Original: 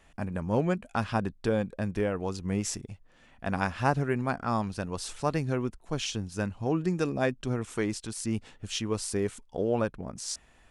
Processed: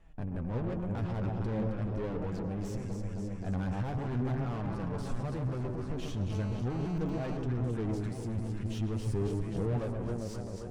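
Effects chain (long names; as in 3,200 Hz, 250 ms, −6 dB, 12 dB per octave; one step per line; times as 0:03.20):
delay that swaps between a low-pass and a high-pass 133 ms, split 1,000 Hz, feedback 83%, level −6.5 dB
convolution reverb RT60 0.95 s, pre-delay 91 ms, DRR 14 dB
tube saturation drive 34 dB, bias 0.65
automatic gain control gain up to 4 dB
brickwall limiter −31 dBFS, peak gain reduction 5 dB
spectral tilt −3 dB per octave
flanger 0.42 Hz, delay 5.9 ms, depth 5.2 ms, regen +43%
0:06.31–0:07.37: phone interference −50 dBFS
0:09.06–0:09.79: parametric band 130 Hz +9 dB 1.3 octaves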